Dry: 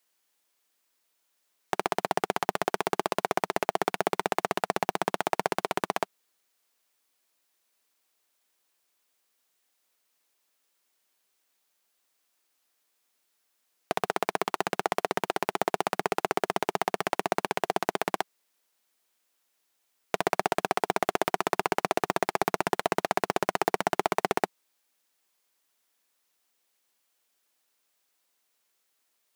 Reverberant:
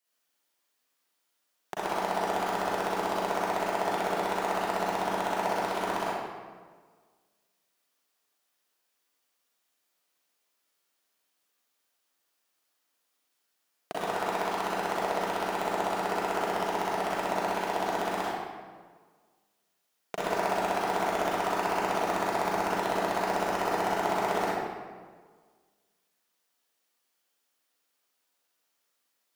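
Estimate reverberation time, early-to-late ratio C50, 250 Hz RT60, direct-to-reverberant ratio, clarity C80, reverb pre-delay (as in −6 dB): 1.6 s, −5.5 dB, 1.6 s, −8.5 dB, −1.5 dB, 35 ms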